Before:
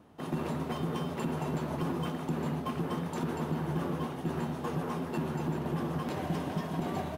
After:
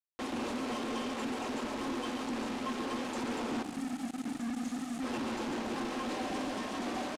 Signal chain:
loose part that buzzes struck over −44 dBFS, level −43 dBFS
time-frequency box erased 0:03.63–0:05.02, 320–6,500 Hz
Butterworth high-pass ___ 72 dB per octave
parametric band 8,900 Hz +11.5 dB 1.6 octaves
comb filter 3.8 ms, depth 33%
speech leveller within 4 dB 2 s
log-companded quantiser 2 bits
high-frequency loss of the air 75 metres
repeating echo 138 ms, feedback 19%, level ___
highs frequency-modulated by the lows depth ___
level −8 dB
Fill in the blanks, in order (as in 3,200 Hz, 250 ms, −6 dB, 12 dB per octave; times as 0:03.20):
210 Hz, −9.5 dB, 0.1 ms